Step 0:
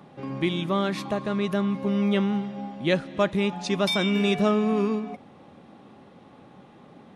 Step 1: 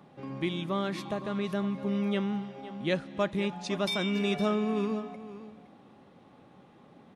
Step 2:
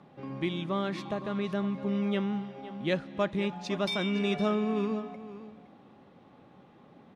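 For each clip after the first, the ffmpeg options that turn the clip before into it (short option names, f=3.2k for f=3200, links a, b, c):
-af "aecho=1:1:514:0.188,volume=-6dB"
-af "adynamicsmooth=sensitivity=2:basefreq=7.3k"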